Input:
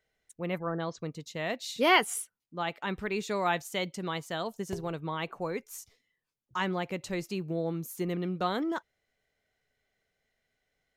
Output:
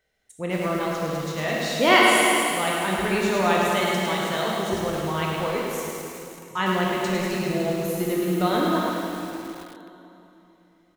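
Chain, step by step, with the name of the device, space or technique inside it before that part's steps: cave (echo 0.277 s -14 dB; reverb RT60 3.1 s, pre-delay 12 ms, DRR -2 dB); lo-fi delay 0.106 s, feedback 55%, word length 7-bit, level -4.5 dB; gain +4 dB

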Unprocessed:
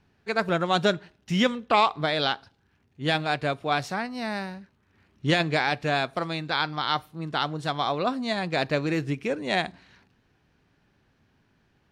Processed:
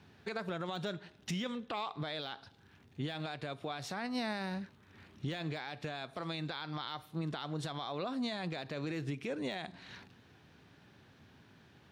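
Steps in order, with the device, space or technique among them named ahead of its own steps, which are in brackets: broadcast voice chain (HPF 73 Hz 24 dB/oct; de-esser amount 65%; compressor 4:1, threshold -38 dBFS, peak gain reduction 17.5 dB; bell 3600 Hz +5 dB 0.3 oct; limiter -34 dBFS, peak gain reduction 11 dB); gain +5.5 dB

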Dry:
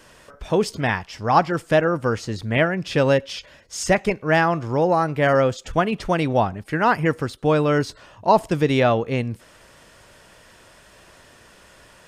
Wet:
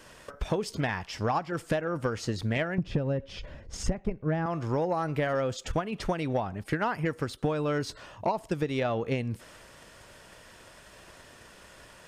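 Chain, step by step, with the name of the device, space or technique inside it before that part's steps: 2.78–4.46 tilt -4 dB/oct; drum-bus smash (transient shaper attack +8 dB, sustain +2 dB; compressor 12:1, threshold -21 dBFS, peak gain reduction 23 dB; soft clip -14 dBFS, distortion -20 dB); gain -2.5 dB

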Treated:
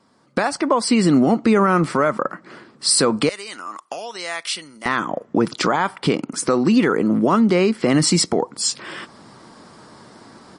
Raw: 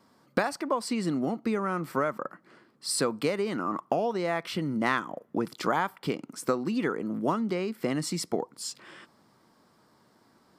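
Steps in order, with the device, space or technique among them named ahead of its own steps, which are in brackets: 3.29–4.86 differentiator; low-bitrate web radio (AGC gain up to 15.5 dB; limiter -10 dBFS, peak gain reduction 8.5 dB; gain +3.5 dB; MP3 40 kbps 32000 Hz)

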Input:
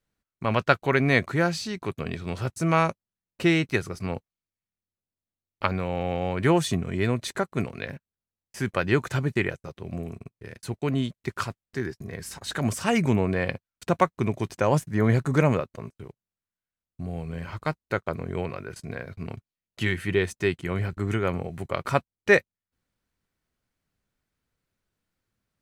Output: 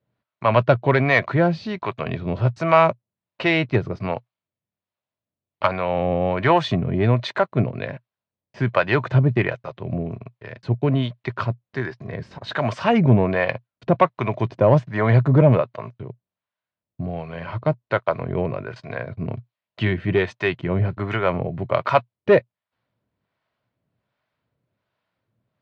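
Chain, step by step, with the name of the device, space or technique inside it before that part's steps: guitar amplifier with harmonic tremolo (harmonic tremolo 1.3 Hz, depth 70%, crossover 560 Hz; soft clip -15.5 dBFS, distortion -17 dB; speaker cabinet 100–4000 Hz, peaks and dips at 120 Hz +9 dB, 620 Hz +9 dB, 990 Hz +6 dB); gain +7.5 dB

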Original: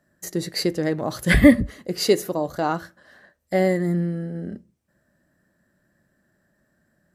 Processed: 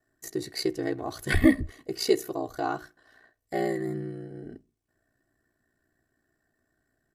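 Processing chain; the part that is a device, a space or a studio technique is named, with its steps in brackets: ring-modulated robot voice (ring modulator 30 Hz; comb 2.7 ms, depth 71%); gain -5.5 dB

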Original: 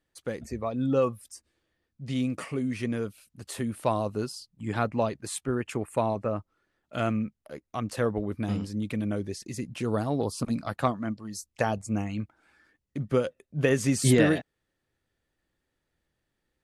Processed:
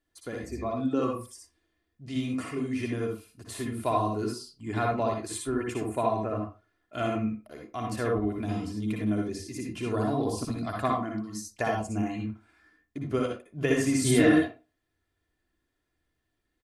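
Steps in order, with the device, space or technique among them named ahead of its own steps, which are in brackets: microphone above a desk (comb 2.9 ms, depth 54%; reverb RT60 0.30 s, pre-delay 54 ms, DRR 0 dB); gain -4 dB

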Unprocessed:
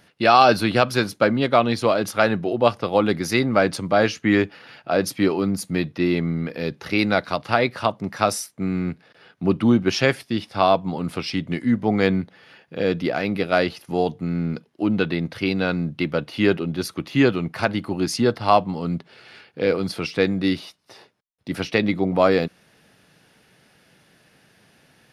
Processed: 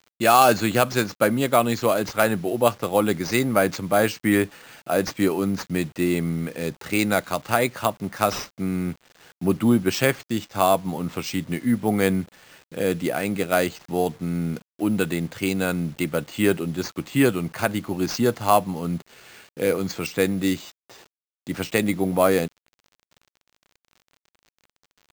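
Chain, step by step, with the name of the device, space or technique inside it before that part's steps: early 8-bit sampler (sample-rate reducer 11000 Hz, jitter 0%; bit-crush 8-bit); gain -1.5 dB

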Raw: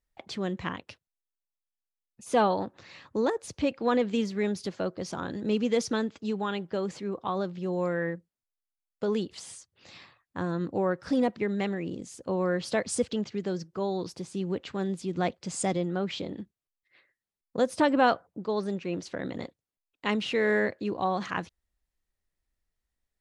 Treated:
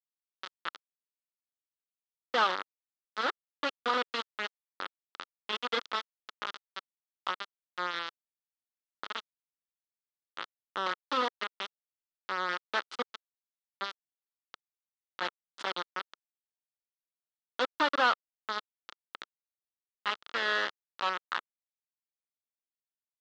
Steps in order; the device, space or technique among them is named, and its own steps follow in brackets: 5.51–5.93 HPF 230 Hz -> 59 Hz 12 dB/oct; tilt shelf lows -3 dB; hand-held game console (bit-crush 4-bit; speaker cabinet 420–4200 Hz, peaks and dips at 440 Hz -3 dB, 700 Hz -7 dB, 1300 Hz +8 dB, 2400 Hz -6 dB, 3400 Hz +3 dB); gain -3 dB

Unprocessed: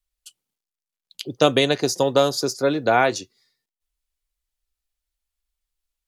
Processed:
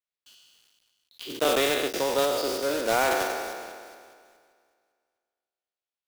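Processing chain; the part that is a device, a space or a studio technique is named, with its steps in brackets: spectral trails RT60 2.04 s; 1.44–1.94 gate with hold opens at -4 dBFS; early digital voice recorder (BPF 270–3900 Hz; block floating point 3-bit); gain -9 dB

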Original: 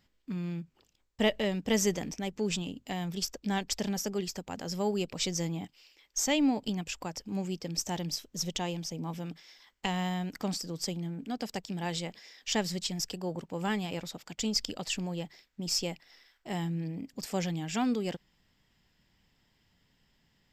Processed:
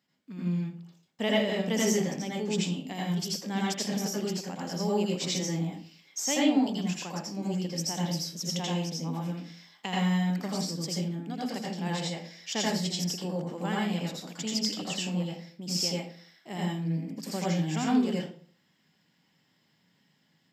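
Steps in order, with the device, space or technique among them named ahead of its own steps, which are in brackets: far laptop microphone (reverb RT60 0.45 s, pre-delay 77 ms, DRR -4 dB; HPF 140 Hz 24 dB/oct; AGC gain up to 3 dB); gain -6.5 dB

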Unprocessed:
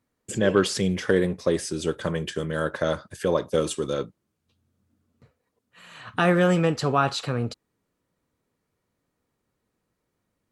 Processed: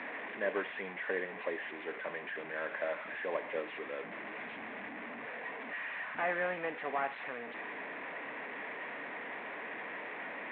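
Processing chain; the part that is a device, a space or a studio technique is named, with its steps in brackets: digital answering machine (BPF 360–3100 Hz; delta modulation 16 kbps, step -27.5 dBFS; speaker cabinet 350–3400 Hz, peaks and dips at 360 Hz -9 dB, 510 Hz -7 dB, 870 Hz -3 dB, 1300 Hz -10 dB, 1900 Hz +5 dB, 3000 Hz -9 dB); gain -5 dB

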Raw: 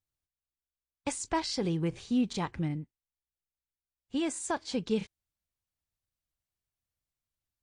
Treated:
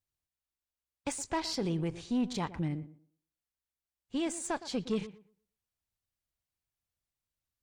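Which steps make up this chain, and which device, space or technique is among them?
rockabilly slapback (tube stage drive 24 dB, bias 0.35; tape echo 0.116 s, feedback 25%, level -13 dB, low-pass 1500 Hz)

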